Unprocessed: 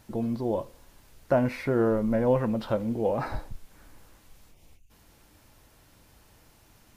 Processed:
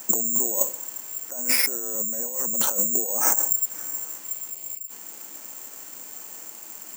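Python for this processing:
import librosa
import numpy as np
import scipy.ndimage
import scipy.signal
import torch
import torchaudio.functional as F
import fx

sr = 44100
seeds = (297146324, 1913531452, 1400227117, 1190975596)

y = (np.kron(scipy.signal.resample_poly(x, 1, 6), np.eye(6)[0]) * 6)[:len(x)]
y = fx.over_compress(y, sr, threshold_db=-28.0, ratio=-1.0)
y = fx.dmg_crackle(y, sr, seeds[0], per_s=42.0, level_db=-41.0)
y = scipy.signal.sosfilt(scipy.signal.bessel(6, 310.0, 'highpass', norm='mag', fs=sr, output='sos'), y)
y = F.gain(torch.from_numpy(y), 3.5).numpy()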